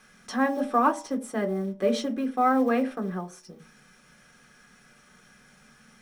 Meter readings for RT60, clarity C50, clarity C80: 0.45 s, 16.0 dB, 20.0 dB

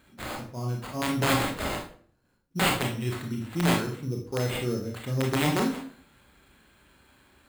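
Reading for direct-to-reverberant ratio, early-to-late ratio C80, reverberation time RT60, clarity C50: 0.0 dB, 11.0 dB, 0.50 s, 6.0 dB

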